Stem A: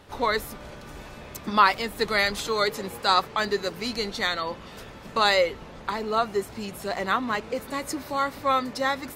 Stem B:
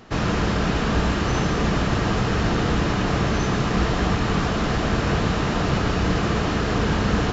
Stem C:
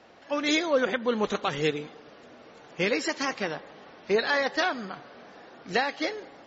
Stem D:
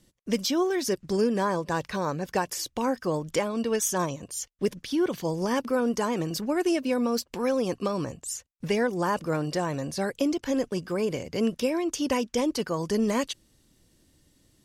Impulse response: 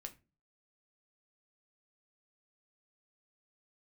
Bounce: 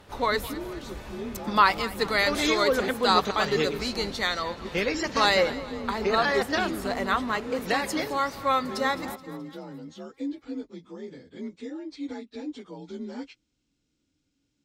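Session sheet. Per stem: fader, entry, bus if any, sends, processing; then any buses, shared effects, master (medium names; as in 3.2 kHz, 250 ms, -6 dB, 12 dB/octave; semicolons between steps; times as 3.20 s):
-1.0 dB, 0.00 s, no send, echo send -17 dB, none
-16.5 dB, 0.00 s, no send, no echo send, inverse Chebyshev band-stop 160–7200 Hz; reverb removal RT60 2 s
-1.0 dB, 1.95 s, no send, no echo send, none
-12.5 dB, 0.00 s, no send, no echo send, frequency axis rescaled in octaves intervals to 88%; peaking EQ 280 Hz +8 dB 0.4 oct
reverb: none
echo: feedback delay 213 ms, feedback 51%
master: none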